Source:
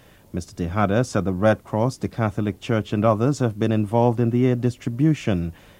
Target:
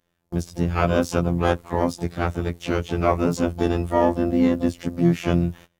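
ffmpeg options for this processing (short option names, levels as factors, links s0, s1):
-filter_complex "[0:a]afftfilt=real='hypot(re,im)*cos(PI*b)':imag='0':win_size=2048:overlap=0.75,asplit=3[s0][s1][s2];[s1]asetrate=33038,aresample=44100,atempo=1.33484,volume=0.224[s3];[s2]asetrate=88200,aresample=44100,atempo=0.5,volume=0.224[s4];[s0][s3][s4]amix=inputs=3:normalize=0,agate=range=0.0631:threshold=0.00708:ratio=16:detection=peak,volume=1.5"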